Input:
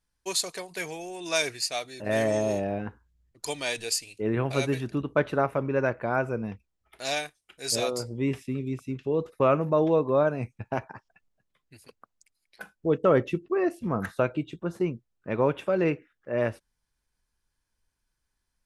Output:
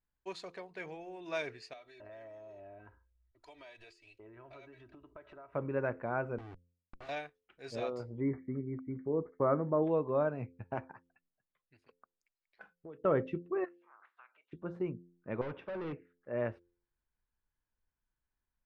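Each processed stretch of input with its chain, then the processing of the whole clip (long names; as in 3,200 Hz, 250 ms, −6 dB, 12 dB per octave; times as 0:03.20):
0:01.73–0:05.54: comb filter 3.1 ms, depth 70% + downward compressor 12 to 1, threshold −37 dBFS + parametric band 220 Hz −12.5 dB 1.3 octaves
0:06.38–0:07.09: lower of the sound and its delayed copy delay 2.6 ms + comparator with hysteresis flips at −46.5 dBFS
0:08.20–0:09.83: linear-phase brick-wall low-pass 2,300 Hz + parametric band 300 Hz +3 dB 0.97 octaves
0:10.92–0:13.05: low-shelf EQ 480 Hz −8 dB + downward compressor 10 to 1, threshold −36 dBFS
0:13.64–0:14.51: ceiling on every frequency bin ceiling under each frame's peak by 24 dB + downward compressor 2 to 1, threshold −43 dBFS + four-pole ladder band-pass 1,600 Hz, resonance 30%
0:15.41–0:15.93: gain into a clipping stage and back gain 29.5 dB + linear-phase brick-wall low-pass 6,200 Hz
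whole clip: low-pass filter 2,100 Hz 12 dB per octave; hum removal 87.04 Hz, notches 6; level −8 dB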